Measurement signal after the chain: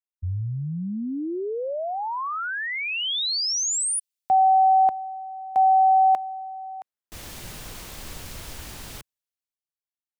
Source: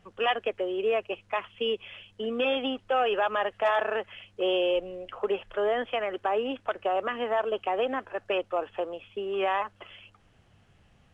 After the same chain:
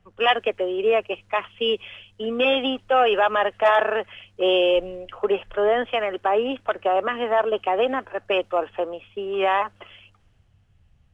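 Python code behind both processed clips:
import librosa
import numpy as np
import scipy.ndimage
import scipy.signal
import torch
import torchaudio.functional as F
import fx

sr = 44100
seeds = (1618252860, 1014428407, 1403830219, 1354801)

y = fx.band_widen(x, sr, depth_pct=40)
y = y * 10.0 ** (6.5 / 20.0)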